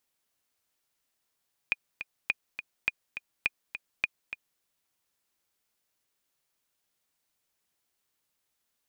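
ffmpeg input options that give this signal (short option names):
-f lavfi -i "aevalsrc='pow(10,(-12-10.5*gte(mod(t,2*60/207),60/207))/20)*sin(2*PI*2450*mod(t,60/207))*exp(-6.91*mod(t,60/207)/0.03)':d=2.89:s=44100"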